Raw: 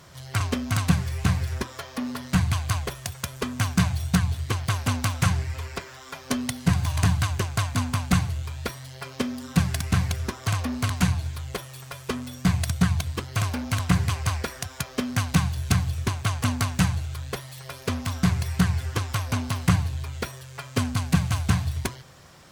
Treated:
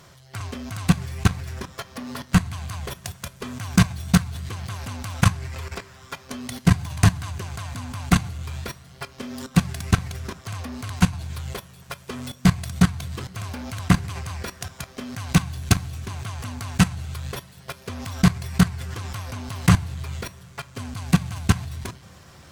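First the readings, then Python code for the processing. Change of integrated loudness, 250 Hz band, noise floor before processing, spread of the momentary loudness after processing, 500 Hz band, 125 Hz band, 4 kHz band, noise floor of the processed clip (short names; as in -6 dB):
+1.0 dB, +3.0 dB, -44 dBFS, 15 LU, -0.5 dB, +0.5 dB, 0.0 dB, -49 dBFS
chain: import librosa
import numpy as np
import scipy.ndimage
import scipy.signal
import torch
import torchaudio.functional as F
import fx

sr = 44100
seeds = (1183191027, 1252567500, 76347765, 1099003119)

y = fx.level_steps(x, sr, step_db=19)
y = fx.rev_double_slope(y, sr, seeds[0], early_s=0.21, late_s=4.8, knee_db=-20, drr_db=14.5)
y = y * librosa.db_to_amplitude(7.0)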